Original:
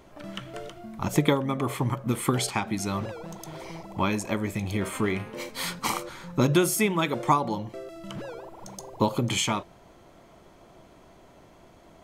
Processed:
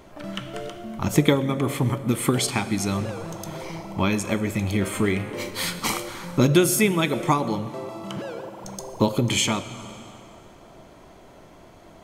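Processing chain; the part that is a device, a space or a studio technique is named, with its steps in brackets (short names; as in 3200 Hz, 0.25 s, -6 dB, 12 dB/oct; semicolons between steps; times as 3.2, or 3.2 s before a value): 7.69–8.65 HPF 100 Hz; digital reverb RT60 2.6 s, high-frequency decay 0.35×, pre-delay 75 ms, DRR 16.5 dB; dynamic EQ 980 Hz, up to -6 dB, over -41 dBFS, Q 1.4; compressed reverb return (on a send at -9.5 dB: reverb RT60 2.0 s, pre-delay 3 ms + compressor, threshold -30 dBFS, peak gain reduction 11 dB); on the sum: gain +4.5 dB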